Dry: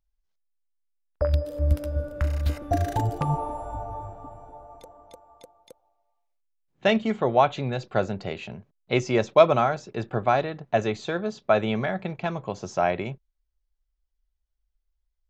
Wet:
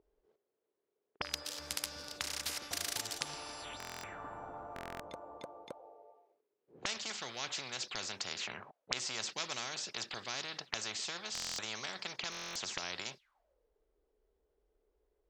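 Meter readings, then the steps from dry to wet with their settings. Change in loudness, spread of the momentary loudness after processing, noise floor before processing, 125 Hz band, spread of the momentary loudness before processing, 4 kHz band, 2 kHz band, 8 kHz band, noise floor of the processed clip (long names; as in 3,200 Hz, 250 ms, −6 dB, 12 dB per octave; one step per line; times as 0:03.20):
−14.0 dB, 10 LU, −77 dBFS, −28.0 dB, 14 LU, +1.0 dB, −8.5 dB, can't be measured, −85 dBFS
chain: envelope filter 410–5,000 Hz, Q 7.5, up, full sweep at −28.5 dBFS
buffer that repeats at 0:03.78/0:04.74/0:11.33/0:12.30, samples 1,024, times 10
every bin compressed towards the loudest bin 4 to 1
level +12 dB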